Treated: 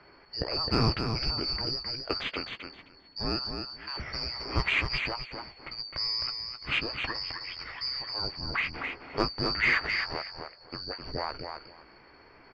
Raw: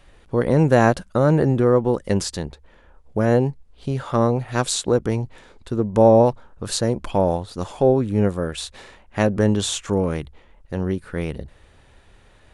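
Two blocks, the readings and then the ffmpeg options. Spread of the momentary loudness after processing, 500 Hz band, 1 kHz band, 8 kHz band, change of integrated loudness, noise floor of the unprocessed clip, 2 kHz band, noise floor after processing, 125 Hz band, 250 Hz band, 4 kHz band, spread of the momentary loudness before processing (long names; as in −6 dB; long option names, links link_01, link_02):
14 LU, −20.0 dB, −11.0 dB, below −25 dB, −10.0 dB, −52 dBFS, +1.5 dB, −56 dBFS, −15.0 dB, −17.0 dB, +3.0 dB, 16 LU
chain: -filter_complex "[0:a]afftfilt=real='real(if(lt(b,272),68*(eq(floor(b/68),0)*1+eq(floor(b/68),1)*2+eq(floor(b/68),2)*3+eq(floor(b/68),3)*0)+mod(b,68),b),0)':imag='imag(if(lt(b,272),68*(eq(floor(b/68),0)*1+eq(floor(b/68),1)*2+eq(floor(b/68),2)*3+eq(floor(b/68),3)*0)+mod(b,68),b),0)':win_size=2048:overlap=0.75,lowpass=frequency=2400:width=0.5412,lowpass=frequency=2400:width=1.3066,equalizer=frequency=210:width_type=o:width=1.1:gain=-7,acontrast=57,asoftclip=type=tanh:threshold=-10dB,asplit=2[link_01][link_02];[link_02]adelay=15,volume=-13dB[link_03];[link_01][link_03]amix=inputs=2:normalize=0,aecho=1:1:261|522|783:0.501|0.0852|0.0145"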